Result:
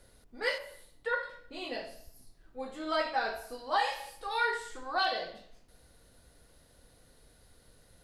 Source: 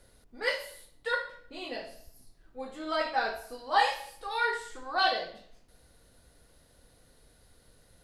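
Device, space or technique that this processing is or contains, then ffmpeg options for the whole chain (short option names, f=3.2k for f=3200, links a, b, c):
clipper into limiter: -filter_complex "[0:a]asettb=1/sr,asplit=3[a][b][c];[a]atrim=end=0.584[d];[b]atrim=start=0.58:end=1.23,asetpts=PTS-STARTPTS,afade=t=in:d=0.004:c=qsin,afade=t=out:st=0.646:d=0.004:c=qsin,acrossover=split=2500[e][f];[f]acompressor=threshold=-56dB:ratio=4:attack=1:release=60[g];[e][g]amix=inputs=2:normalize=0[h];[c]atrim=start=1.226[i];[d][h]acrossfade=d=0.004:c1=hsin:c2=qsin[j];[j][i]acrossfade=d=0.004:c1=qsin:c2=hsin,asoftclip=type=hard:threshold=-13.5dB,alimiter=limit=-19dB:level=0:latency=1:release=239"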